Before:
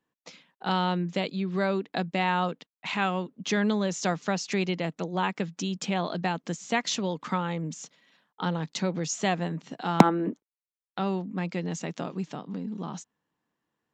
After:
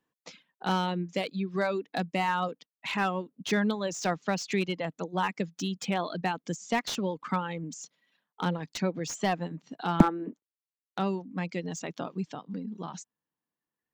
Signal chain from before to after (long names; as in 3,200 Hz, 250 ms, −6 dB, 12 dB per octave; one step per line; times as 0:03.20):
reverb reduction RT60 1.8 s
slew-rate limiting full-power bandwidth 120 Hz